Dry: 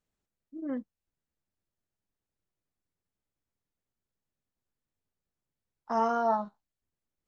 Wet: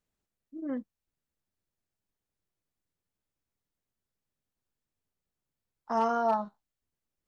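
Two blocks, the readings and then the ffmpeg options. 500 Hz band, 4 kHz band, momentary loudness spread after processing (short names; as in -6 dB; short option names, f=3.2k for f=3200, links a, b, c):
0.0 dB, +1.5 dB, 16 LU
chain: -af "asoftclip=type=hard:threshold=-19.5dB"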